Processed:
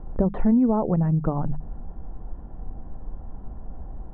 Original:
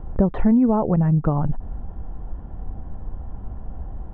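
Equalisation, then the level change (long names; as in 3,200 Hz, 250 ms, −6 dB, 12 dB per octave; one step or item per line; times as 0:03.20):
parametric band 80 Hz −7.5 dB 0.68 octaves
high-shelf EQ 2,200 Hz −9.5 dB
mains-hum notches 50/100/150/200 Hz
−2.0 dB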